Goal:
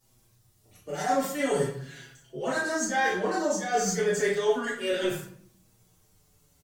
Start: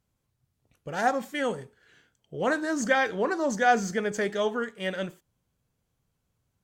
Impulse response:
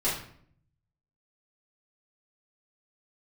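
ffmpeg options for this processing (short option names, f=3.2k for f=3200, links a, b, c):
-filter_complex "[0:a]bass=f=250:g=-3,treble=f=4k:g=11,areverse,acompressor=threshold=-37dB:ratio=6,areverse[a];[1:a]atrim=start_sample=2205[b];[a][b]afir=irnorm=-1:irlink=0,asplit=2[c][d];[d]adelay=5.8,afreqshift=-0.37[e];[c][e]amix=inputs=2:normalize=1,volume=5dB"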